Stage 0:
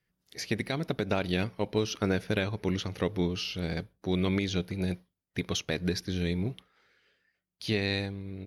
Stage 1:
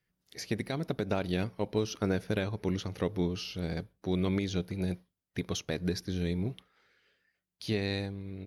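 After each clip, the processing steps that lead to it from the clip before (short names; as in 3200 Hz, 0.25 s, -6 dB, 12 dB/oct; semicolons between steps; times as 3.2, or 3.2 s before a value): dynamic EQ 2600 Hz, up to -5 dB, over -46 dBFS, Q 0.76; gain -1.5 dB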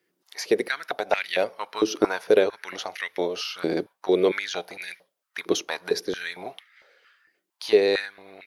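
stepped high-pass 4.4 Hz 340–2000 Hz; gain +7.5 dB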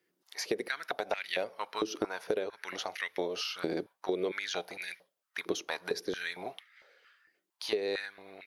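compressor 10:1, threshold -24 dBFS, peak gain reduction 12.5 dB; gain -4 dB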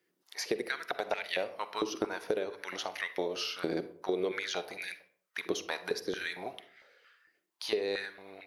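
reverb RT60 0.50 s, pre-delay 41 ms, DRR 12.5 dB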